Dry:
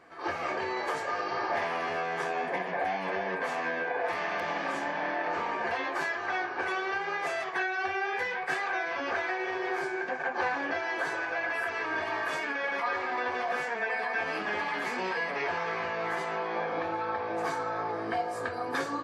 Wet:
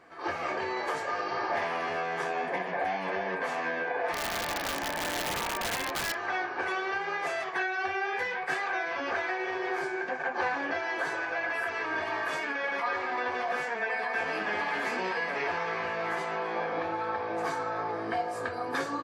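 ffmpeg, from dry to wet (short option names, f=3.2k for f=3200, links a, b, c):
-filter_complex "[0:a]asplit=3[a][b][c];[a]afade=t=out:st=4.12:d=0.02[d];[b]aeval=exprs='(mod(17.8*val(0)+1,2)-1)/17.8':c=same,afade=t=in:st=4.12:d=0.02,afade=t=out:st=6.13:d=0.02[e];[c]afade=t=in:st=6.13:d=0.02[f];[d][e][f]amix=inputs=3:normalize=0,asplit=2[g][h];[h]afade=t=in:st=13.56:d=0.01,afade=t=out:st=14.41:d=0.01,aecho=0:1:570|1140|1710|2280|2850|3420|3990|4560|5130|5700|6270:0.421697|0.295188|0.206631|0.144642|0.101249|0.0708745|0.0496122|0.0347285|0.02431|0.017017|0.0119119[i];[g][i]amix=inputs=2:normalize=0"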